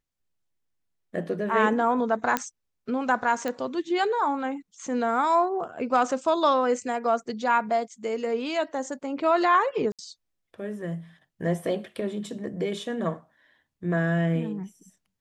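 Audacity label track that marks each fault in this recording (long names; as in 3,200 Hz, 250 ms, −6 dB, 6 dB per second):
2.370000	2.370000	click −8 dBFS
3.480000	3.480000	click −16 dBFS
9.920000	9.990000	drop-out 67 ms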